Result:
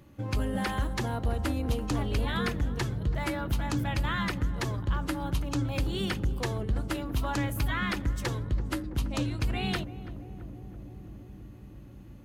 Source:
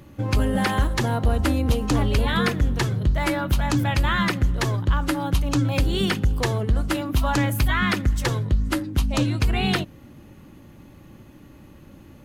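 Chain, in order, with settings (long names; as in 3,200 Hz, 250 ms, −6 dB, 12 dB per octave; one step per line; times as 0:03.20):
feedback echo with a low-pass in the loop 331 ms, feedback 85%, low-pass 930 Hz, level −13 dB
level −8.5 dB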